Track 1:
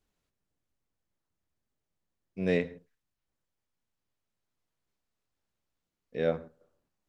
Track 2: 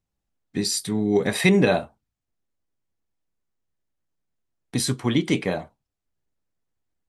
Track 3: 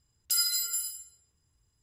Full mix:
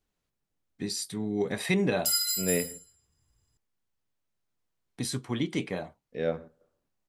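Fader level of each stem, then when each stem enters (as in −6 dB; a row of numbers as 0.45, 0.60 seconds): −1.0, −8.5, 0.0 decibels; 0.00, 0.25, 1.75 seconds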